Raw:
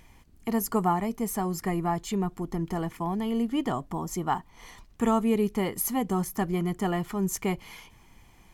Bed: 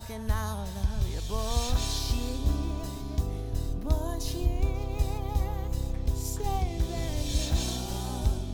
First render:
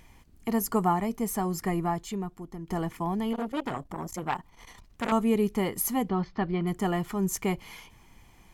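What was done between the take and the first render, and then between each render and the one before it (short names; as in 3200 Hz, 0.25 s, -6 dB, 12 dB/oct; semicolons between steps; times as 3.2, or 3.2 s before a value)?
1.82–2.69 fade out quadratic, to -9.5 dB; 3.33–5.12 core saturation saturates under 1600 Hz; 6.09–6.67 elliptic low-pass 4500 Hz, stop band 60 dB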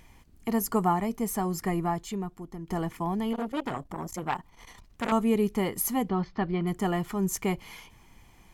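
nothing audible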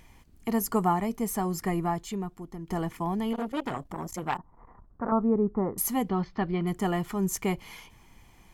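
4.37–5.78 steep low-pass 1400 Hz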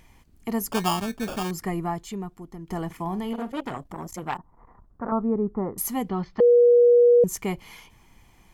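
0.72–1.51 sample-rate reducer 2000 Hz; 2.86–3.61 doubler 43 ms -13.5 dB; 6.4–7.24 bleep 481 Hz -12 dBFS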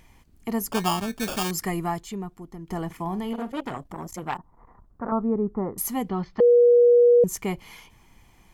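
1.16–2 high shelf 2100 Hz +8.5 dB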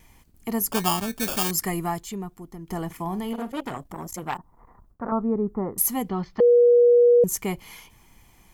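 gate with hold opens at -48 dBFS; high shelf 8200 Hz +10 dB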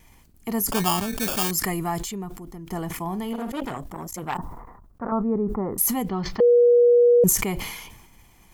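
sustainer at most 47 dB/s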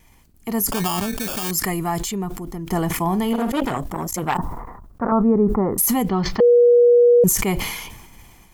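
AGC gain up to 8.5 dB; limiter -9 dBFS, peak gain reduction 7.5 dB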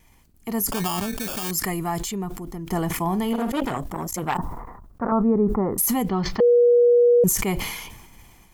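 gain -3 dB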